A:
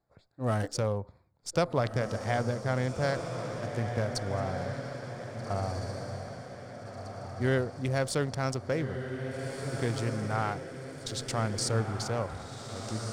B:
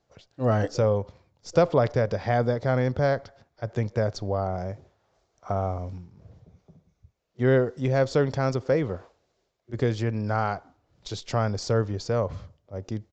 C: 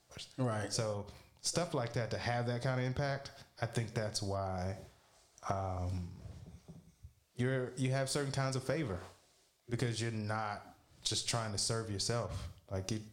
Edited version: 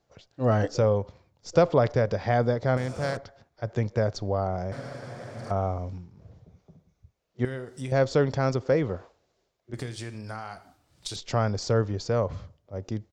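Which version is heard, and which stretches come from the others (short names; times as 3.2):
B
2.77–3.17 from A
4.72–5.51 from A
7.45–7.92 from C
9.74–11.16 from C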